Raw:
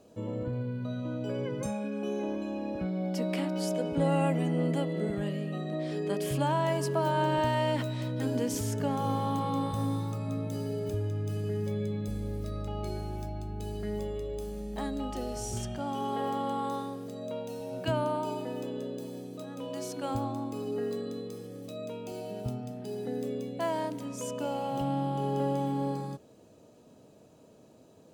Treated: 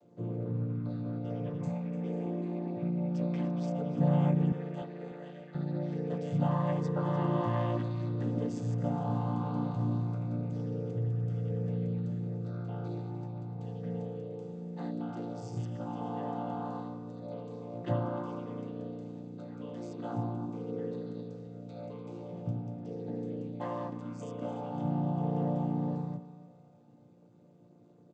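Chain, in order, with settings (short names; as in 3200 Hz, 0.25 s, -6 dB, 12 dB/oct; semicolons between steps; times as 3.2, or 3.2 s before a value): chord vocoder major triad, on A#2; 4.52–5.55 HPF 590 Hz 12 dB/oct; feedback echo 0.297 s, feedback 41%, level -14.5 dB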